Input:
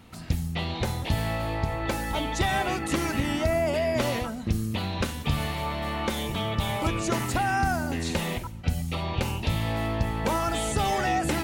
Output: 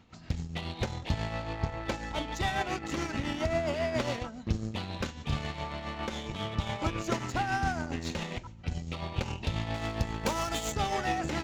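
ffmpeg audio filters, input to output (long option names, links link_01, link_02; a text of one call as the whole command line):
ffmpeg -i in.wav -filter_complex "[0:a]aresample=16000,aresample=44100,asplit=2[link_01][link_02];[link_02]acrusher=bits=3:mix=0:aa=0.5,volume=-6dB[link_03];[link_01][link_03]amix=inputs=2:normalize=0,asettb=1/sr,asplit=3[link_04][link_05][link_06];[link_04]atrim=end=9.744[link_07];[link_05]atrim=start=9.74:end=10.72,asetpts=PTS-STARTPTS,afade=type=in:duration=0.004:curve=qsin,afade=type=out:start_time=0.976:duration=0.004:curve=qsin,aemphasis=mode=production:type=50fm[link_08];[link_06]atrim=start=10.716[link_09];[link_07][link_08]acrossfade=duration=0.004:curve1=hsin:curve2=qsin[link_10];[link_10][link_09]acrossfade=duration=0.004:curve1=qsin:curve2=hsin,tremolo=f=7.3:d=0.49,volume=-6.5dB" out.wav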